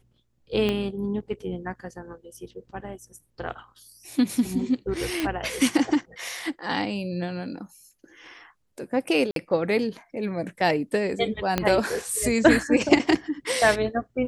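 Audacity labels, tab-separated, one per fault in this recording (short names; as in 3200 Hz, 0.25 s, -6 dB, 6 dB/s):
0.690000	0.690000	pop -13 dBFS
5.200000	5.200000	pop -12 dBFS
9.310000	9.360000	gap 52 ms
11.580000	11.580000	pop -7 dBFS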